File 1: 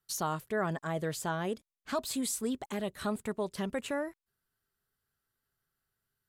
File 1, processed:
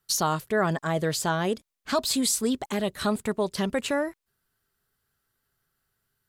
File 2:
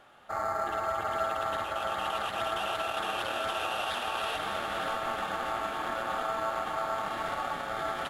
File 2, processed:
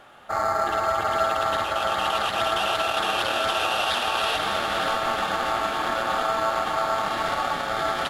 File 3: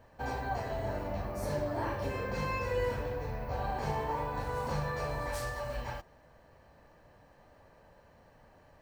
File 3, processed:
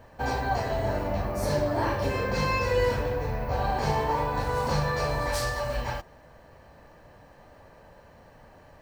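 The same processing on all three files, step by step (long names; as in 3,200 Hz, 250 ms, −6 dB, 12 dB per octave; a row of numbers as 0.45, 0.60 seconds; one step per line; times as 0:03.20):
dynamic equaliser 4,700 Hz, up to +6 dB, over −54 dBFS, Q 1.4
level +7.5 dB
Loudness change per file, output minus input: +8.0, +8.0, +7.5 LU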